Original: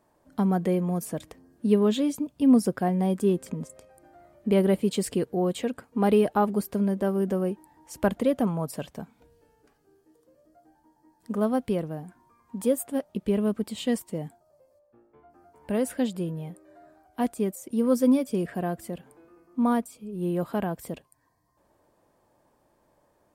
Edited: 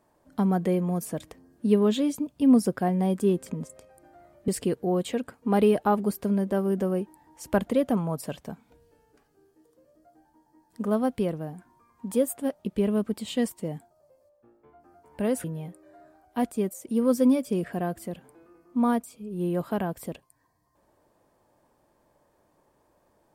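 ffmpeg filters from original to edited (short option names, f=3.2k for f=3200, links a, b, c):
-filter_complex "[0:a]asplit=3[a][b][c];[a]atrim=end=4.482[d];[b]atrim=start=4.978:end=15.942[e];[c]atrim=start=16.258[f];[d][e]acrossfade=d=0.004:c1=hsin:c2=hsin[g];[g][f]acrossfade=d=0.004:c1=hsin:c2=hsin"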